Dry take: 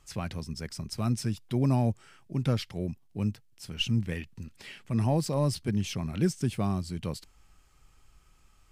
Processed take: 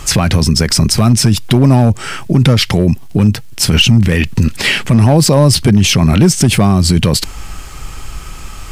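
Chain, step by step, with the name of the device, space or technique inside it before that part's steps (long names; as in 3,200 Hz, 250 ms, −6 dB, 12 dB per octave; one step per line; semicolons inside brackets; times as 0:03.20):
loud club master (downward compressor 2 to 1, threshold −32 dBFS, peak gain reduction 7 dB; hard clipping −25 dBFS, distortion −22 dB; boost into a limiter +34.5 dB)
level −1 dB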